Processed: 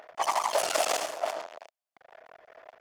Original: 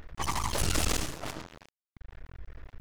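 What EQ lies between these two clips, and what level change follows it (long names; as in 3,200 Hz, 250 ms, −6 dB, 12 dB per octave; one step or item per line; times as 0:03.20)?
high-pass with resonance 650 Hz, resonance Q 4.9
high-shelf EQ 10,000 Hz −4.5 dB
notch filter 3,900 Hz, Q 19
+1.5 dB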